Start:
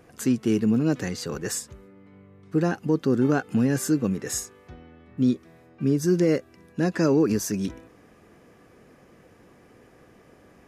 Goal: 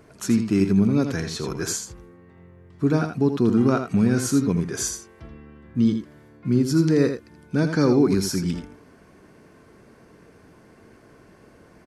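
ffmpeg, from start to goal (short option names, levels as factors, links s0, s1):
-filter_complex "[0:a]asetrate=39690,aresample=44100,asplit=2[s0][s1];[s1]aecho=0:1:82:0.398[s2];[s0][s2]amix=inputs=2:normalize=0,volume=1.26"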